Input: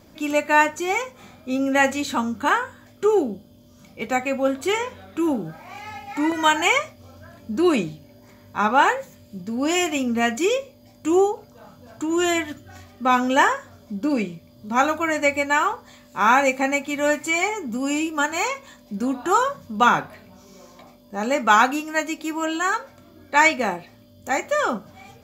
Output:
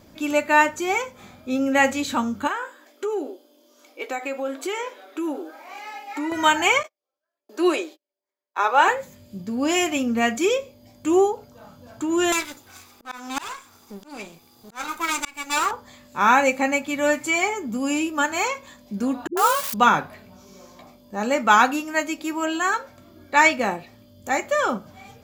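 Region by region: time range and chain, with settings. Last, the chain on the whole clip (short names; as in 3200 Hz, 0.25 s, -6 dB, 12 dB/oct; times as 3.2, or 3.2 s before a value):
2.47–6.32 brick-wall FIR high-pass 260 Hz + compressor 3:1, threshold -25 dBFS
6.83–8.88 gate -38 dBFS, range -38 dB + steep high-pass 330 Hz 48 dB/oct
12.32–15.71 minimum comb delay 0.82 ms + tone controls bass -13 dB, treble +8 dB + auto swell 0.386 s
19.27–19.74 switching spikes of -15 dBFS + tone controls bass -12 dB, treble -2 dB + dispersion highs, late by 0.102 s, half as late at 350 Hz
whole clip: dry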